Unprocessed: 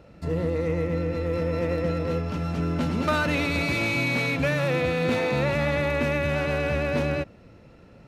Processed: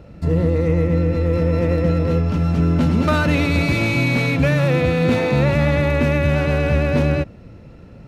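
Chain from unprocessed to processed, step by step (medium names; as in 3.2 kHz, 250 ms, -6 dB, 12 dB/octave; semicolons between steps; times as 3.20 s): bass shelf 270 Hz +9 dB; trim +3.5 dB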